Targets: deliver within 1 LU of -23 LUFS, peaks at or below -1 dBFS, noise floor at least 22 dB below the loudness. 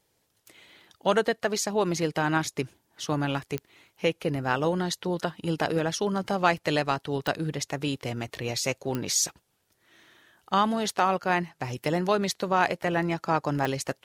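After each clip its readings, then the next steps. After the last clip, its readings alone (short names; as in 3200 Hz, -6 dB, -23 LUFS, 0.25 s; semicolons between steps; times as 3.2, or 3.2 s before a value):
clicks 4; loudness -27.5 LUFS; peak -7.0 dBFS; loudness target -23.0 LUFS
-> de-click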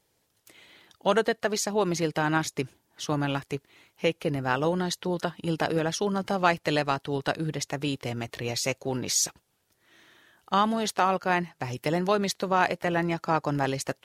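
clicks 0; loudness -27.5 LUFS; peak -7.0 dBFS; loudness target -23.0 LUFS
-> gain +4.5 dB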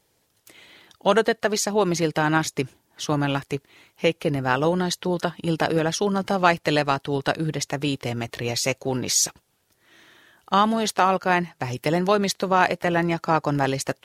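loudness -23.0 LUFS; peak -2.5 dBFS; noise floor -68 dBFS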